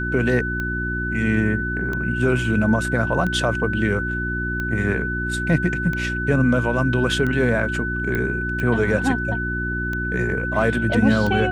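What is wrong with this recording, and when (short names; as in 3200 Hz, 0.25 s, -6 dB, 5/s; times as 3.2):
hum 60 Hz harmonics 6 -27 dBFS
tick 45 rpm -15 dBFS
tone 1500 Hz -25 dBFS
8.15 pop -12 dBFS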